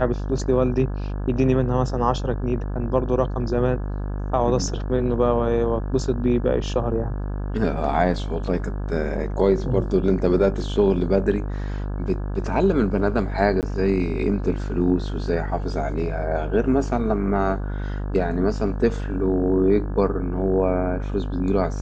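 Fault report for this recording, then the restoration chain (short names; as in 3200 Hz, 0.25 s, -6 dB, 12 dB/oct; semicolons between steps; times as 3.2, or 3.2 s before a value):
buzz 50 Hz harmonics 34 -27 dBFS
13.61–13.63 gap 18 ms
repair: de-hum 50 Hz, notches 34; interpolate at 13.61, 18 ms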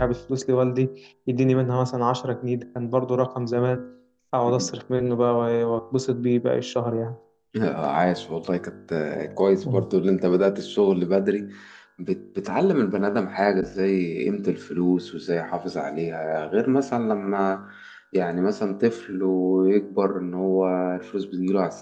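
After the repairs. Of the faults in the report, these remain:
none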